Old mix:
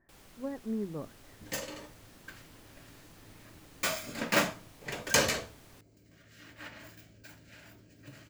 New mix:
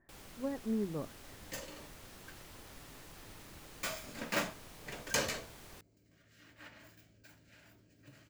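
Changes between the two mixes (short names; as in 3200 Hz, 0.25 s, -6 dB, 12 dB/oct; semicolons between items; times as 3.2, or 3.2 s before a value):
first sound +3.5 dB; second sound -7.5 dB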